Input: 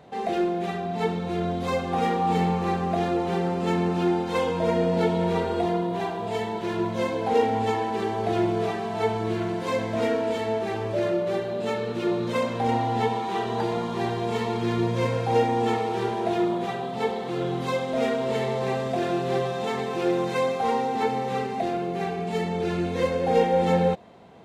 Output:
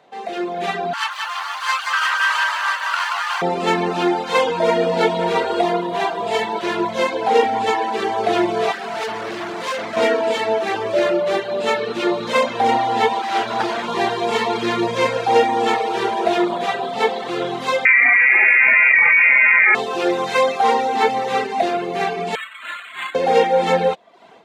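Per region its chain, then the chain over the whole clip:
0.93–3.42 minimum comb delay 0.65 ms + steep high-pass 830 Hz + lo-fi delay 0.179 s, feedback 35%, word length 9-bit, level -3.5 dB
8.72–9.97 de-hum 52.87 Hz, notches 12 + overloaded stage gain 31.5 dB
13.22–13.88 minimum comb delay 8.9 ms + high shelf 7700 Hz -4 dB + notch 480 Hz, Q 6.9
17.85–19.75 inverted band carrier 2600 Hz + fast leveller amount 100%
22.35–23.15 steep high-pass 1100 Hz 72 dB/oct + decimation joined by straight lines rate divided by 8×
whole clip: weighting filter A; reverb removal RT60 0.63 s; AGC gain up to 12 dB

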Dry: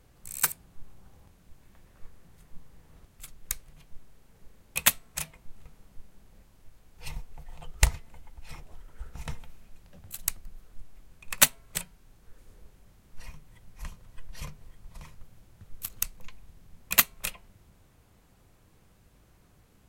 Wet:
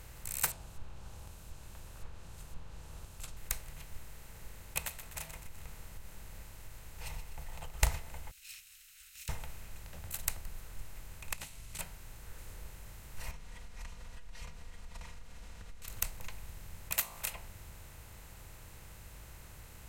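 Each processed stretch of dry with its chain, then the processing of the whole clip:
0.5–3.37 bell 2000 Hz -13 dB 0.44 oct + treble ducked by the level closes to 2900 Hz, closed at -34.5 dBFS
4.78–7.81 compressor 3:1, threshold -42 dBFS + feedback echo 0.125 s, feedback 41%, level -15.5 dB
8.31–9.29 minimum comb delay 0.74 ms + inverse Chebyshev high-pass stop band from 990 Hz, stop band 50 dB
11.33–11.79 CVSD 64 kbps + band shelf 820 Hz -10.5 dB 2.7 oct + compressor 16:1, threshold -44 dBFS
13.31–15.88 Chebyshev low-pass 5300 Hz + compressor 4:1, threshold -51 dBFS + comb 4.2 ms, depth 91%
16.92–17.33 tilt +2 dB/oct + de-hum 53.81 Hz, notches 22 + compressor 1.5:1, threshold -41 dBFS
whole clip: per-bin compression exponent 0.6; dynamic EQ 710 Hz, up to +5 dB, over -51 dBFS, Q 1.7; gain -8 dB

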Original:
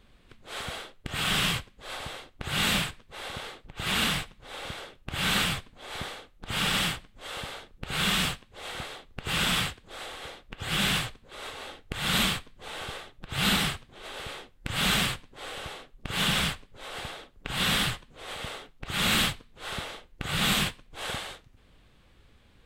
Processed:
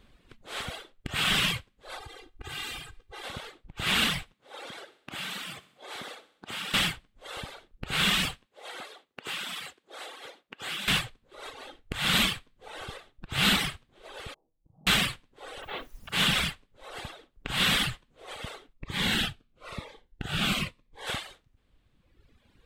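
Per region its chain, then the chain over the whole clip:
1.98–3.24 comb 2.5 ms, depth 95% + compressor 3:1, threshold -38 dBFS
4.33–6.74 HPF 210 Hz + compressor 5:1, threshold -34 dBFS + feedback echo 64 ms, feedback 54%, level -9.5 dB
8.46–10.88 HPF 300 Hz + compressor 8:1, threshold -32 dBFS
14.34–14.87 steep low-pass 900 Hz 48 dB/oct + compressor 2.5:1, threshold -53 dBFS + resonator 160 Hz, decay 0.25 s, mix 70%
15.61–16.11 LPF 3700 Hz 24 dB/oct + negative-ratio compressor -42 dBFS, ratio -0.5 + added noise pink -52 dBFS
18.73–21.07 high shelf 4300 Hz -8.5 dB + cascading phaser falling 1 Hz
whole clip: bell 280 Hz +2 dB; reverb removal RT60 1.8 s; dynamic EQ 2500 Hz, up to +4 dB, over -39 dBFS, Q 0.76

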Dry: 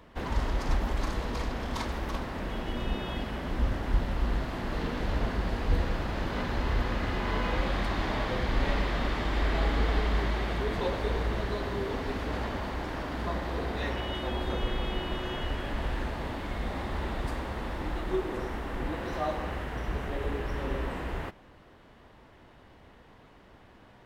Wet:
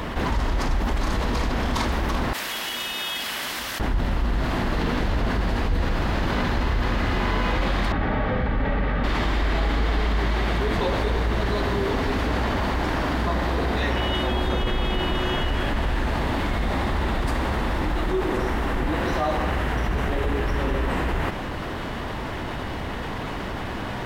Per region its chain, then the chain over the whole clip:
2.33–3.8 compressor 2:1, threshold -31 dBFS + differentiator
7.92–9.04 LPF 1900 Hz + notch 1000 Hz, Q 6.7 + notch comb 350 Hz
whole clip: bell 500 Hz -2.5 dB 0.81 oct; fast leveller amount 70%

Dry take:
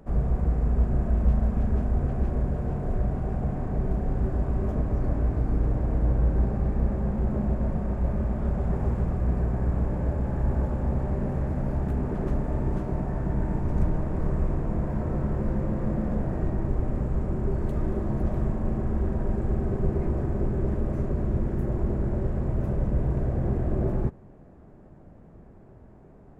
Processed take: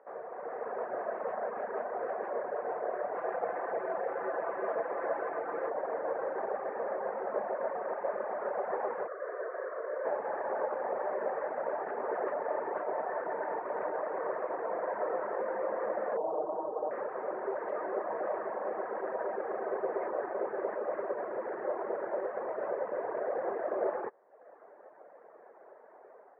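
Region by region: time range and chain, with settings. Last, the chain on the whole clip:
3.15–5.7 high shelf 2000 Hz +6 dB + comb 5.9 ms, depth 48%
9.07–10.05 HPF 310 Hz + fixed phaser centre 830 Hz, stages 6
16.17–16.91 steep low-pass 1100 Hz + comb 6.4 ms, depth 51%
whole clip: Chebyshev band-pass 480–1900 Hz, order 3; reverb removal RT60 0.82 s; AGC gain up to 8 dB

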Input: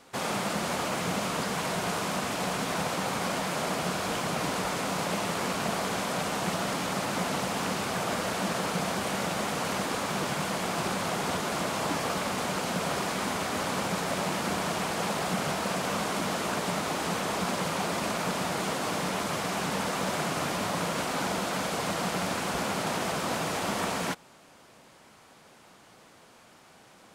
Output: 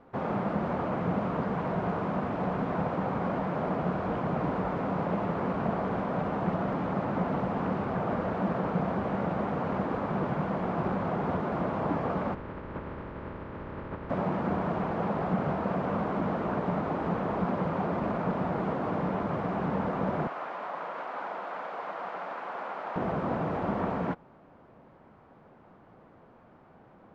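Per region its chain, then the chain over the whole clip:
12.33–14.09 spectral limiter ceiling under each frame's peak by 24 dB + tape spacing loss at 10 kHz 37 dB + notch 730 Hz, Q 6.3
20.27–22.96 HPF 780 Hz + high shelf 10000 Hz -10 dB
whole clip: LPF 1300 Hz 12 dB/oct; tilt -1.5 dB/oct

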